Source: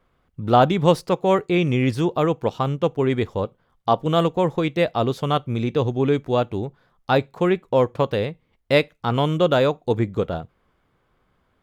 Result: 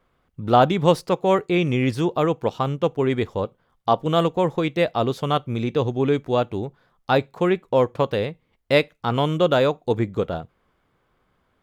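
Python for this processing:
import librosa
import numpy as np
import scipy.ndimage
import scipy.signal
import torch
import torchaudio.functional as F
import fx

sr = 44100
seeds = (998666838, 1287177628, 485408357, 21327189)

y = fx.low_shelf(x, sr, hz=160.0, db=-3.0)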